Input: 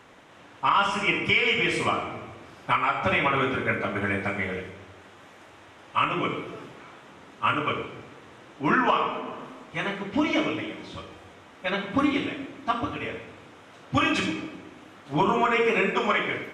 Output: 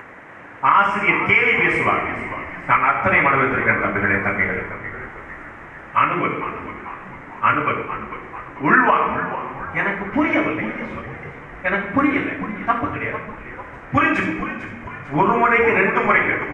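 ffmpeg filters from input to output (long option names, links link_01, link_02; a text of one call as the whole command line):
ffmpeg -i in.wav -filter_complex "[0:a]acompressor=mode=upward:threshold=-41dB:ratio=2.5,highshelf=frequency=2700:width_type=q:width=3:gain=-11,asplit=6[link_01][link_02][link_03][link_04][link_05][link_06];[link_02]adelay=448,afreqshift=-83,volume=-12dB[link_07];[link_03]adelay=896,afreqshift=-166,volume=-18dB[link_08];[link_04]adelay=1344,afreqshift=-249,volume=-24dB[link_09];[link_05]adelay=1792,afreqshift=-332,volume=-30.1dB[link_10];[link_06]adelay=2240,afreqshift=-415,volume=-36.1dB[link_11];[link_01][link_07][link_08][link_09][link_10][link_11]amix=inputs=6:normalize=0,volume=5dB" out.wav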